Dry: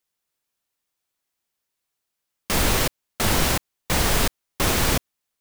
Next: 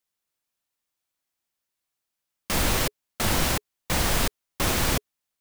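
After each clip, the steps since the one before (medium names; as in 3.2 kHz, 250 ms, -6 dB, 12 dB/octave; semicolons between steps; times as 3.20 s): band-stop 420 Hz, Q 12; trim -3 dB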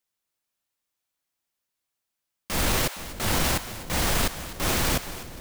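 two-band feedback delay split 660 Hz, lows 466 ms, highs 252 ms, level -15 dB; transient shaper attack -5 dB, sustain +3 dB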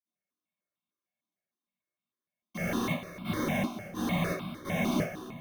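reverberation, pre-delay 46 ms; stepped phaser 6.6 Hz 490–1800 Hz; trim -6.5 dB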